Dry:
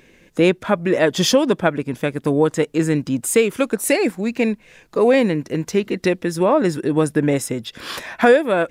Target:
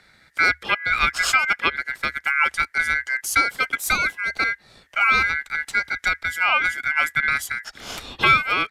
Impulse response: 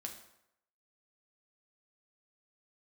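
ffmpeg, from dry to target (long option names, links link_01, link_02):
-af "aeval=exprs='val(0)*sin(2*PI*1900*n/s)':channel_layout=same,afreqshift=-76,aresample=32000,aresample=44100,volume=-1dB"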